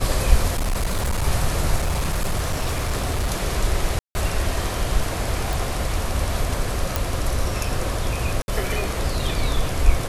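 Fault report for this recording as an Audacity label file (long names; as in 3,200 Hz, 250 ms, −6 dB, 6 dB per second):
0.530000	1.260000	clipping −18.5 dBFS
1.760000	3.300000	clipping −18 dBFS
3.990000	4.150000	drop-out 160 ms
5.530000	5.530000	click
6.960000	6.960000	click
8.420000	8.480000	drop-out 61 ms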